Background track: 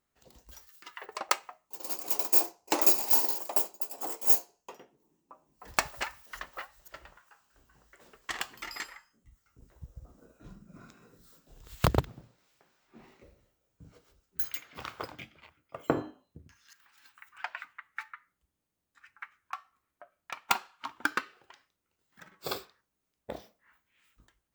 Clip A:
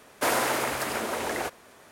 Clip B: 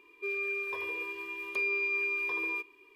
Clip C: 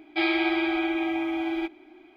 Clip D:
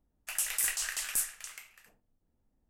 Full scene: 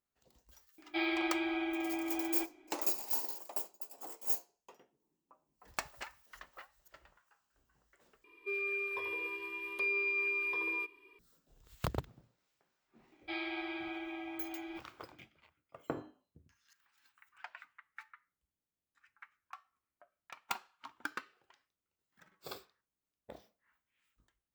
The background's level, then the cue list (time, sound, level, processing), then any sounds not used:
background track -11 dB
0.78 add C -9.5 dB
8.24 replace with B -2.5 dB + bell 6500 Hz -8 dB 0.3 oct
13.12 add C -14 dB + bell 240 Hz -3.5 dB 1.8 oct
not used: A, D

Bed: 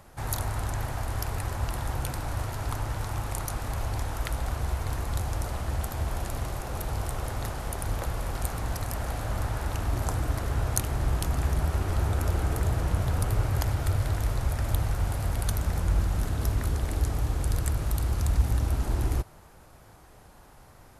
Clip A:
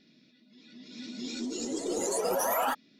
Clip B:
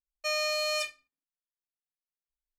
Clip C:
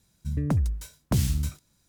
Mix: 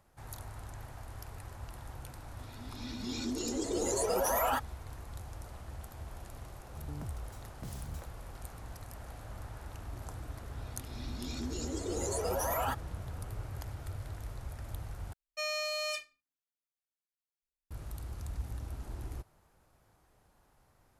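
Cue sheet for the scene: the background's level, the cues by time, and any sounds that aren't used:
bed -15 dB
1.85 add A -15.5 dB + AGC gain up to 14.5 dB
6.51 add C -15.5 dB + limiter -19.5 dBFS
10 add A -5 dB
15.13 replace with B -5.5 dB

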